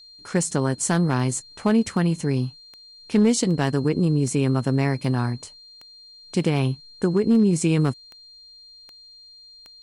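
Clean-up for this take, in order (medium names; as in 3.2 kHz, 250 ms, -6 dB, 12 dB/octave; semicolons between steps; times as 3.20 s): clip repair -11.5 dBFS; de-click; band-stop 4.2 kHz, Q 30; expander -40 dBFS, range -21 dB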